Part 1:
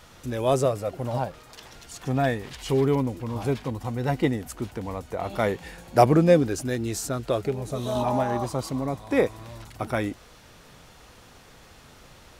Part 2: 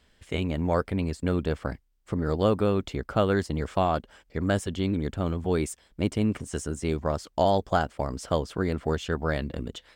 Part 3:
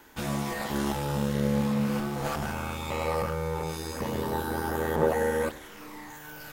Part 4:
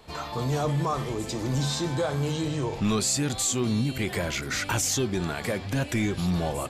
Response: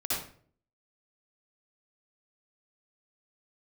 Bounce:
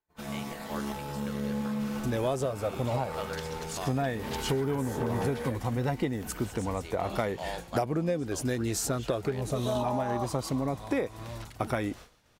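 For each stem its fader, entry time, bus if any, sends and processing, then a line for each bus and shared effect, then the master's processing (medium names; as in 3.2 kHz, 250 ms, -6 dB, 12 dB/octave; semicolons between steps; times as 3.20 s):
+2.0 dB, 1.80 s, no send, none
-7.0 dB, 0.00 s, muted 3.90–6.23 s, no send, high-pass 1.4 kHz 6 dB/octave
-7.5 dB, 0.00 s, no send, comb 4.6 ms, depth 47%
-4.0 dB, 0.00 s, no send, high-order bell 4.3 kHz -13 dB; feedback comb 180 Hz, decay 0.21 s, harmonics all, mix 50%; auto duck -21 dB, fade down 0.65 s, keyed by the second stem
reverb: none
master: expander -37 dBFS; compression 16:1, threshold -25 dBFS, peak gain reduction 17.5 dB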